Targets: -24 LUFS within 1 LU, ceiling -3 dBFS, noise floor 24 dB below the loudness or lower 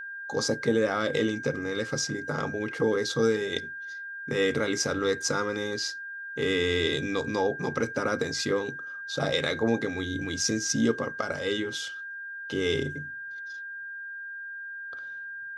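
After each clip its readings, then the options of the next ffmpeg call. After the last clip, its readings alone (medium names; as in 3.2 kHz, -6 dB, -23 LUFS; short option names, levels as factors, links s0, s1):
steady tone 1.6 kHz; tone level -36 dBFS; loudness -29.0 LUFS; peak level -12.5 dBFS; loudness target -24.0 LUFS
-> -af "bandreject=f=1600:w=30"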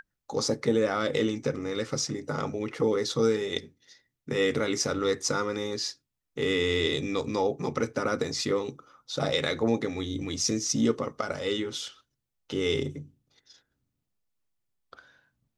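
steady tone not found; loudness -28.5 LUFS; peak level -12.5 dBFS; loudness target -24.0 LUFS
-> -af "volume=1.68"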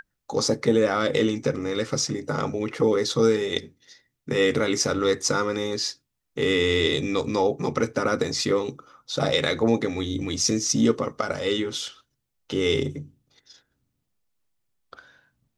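loudness -24.0 LUFS; peak level -8.0 dBFS; noise floor -78 dBFS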